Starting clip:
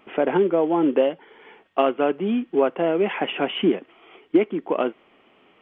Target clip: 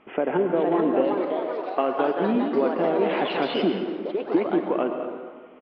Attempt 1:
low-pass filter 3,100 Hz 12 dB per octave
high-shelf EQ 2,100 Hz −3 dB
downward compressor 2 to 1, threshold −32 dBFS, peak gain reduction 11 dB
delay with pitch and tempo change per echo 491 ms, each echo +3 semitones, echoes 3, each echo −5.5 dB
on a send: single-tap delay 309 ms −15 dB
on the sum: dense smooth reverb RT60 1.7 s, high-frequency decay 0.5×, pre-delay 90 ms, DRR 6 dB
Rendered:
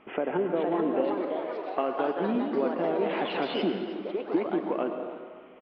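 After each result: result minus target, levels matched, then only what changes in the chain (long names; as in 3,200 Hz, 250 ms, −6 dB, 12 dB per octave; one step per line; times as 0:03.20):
echo 90 ms late; downward compressor: peak gain reduction +5 dB
change: single-tap delay 219 ms −15 dB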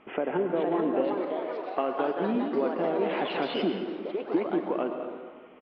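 downward compressor: peak gain reduction +5 dB
change: downward compressor 2 to 1, threshold −22 dBFS, peak gain reduction 6 dB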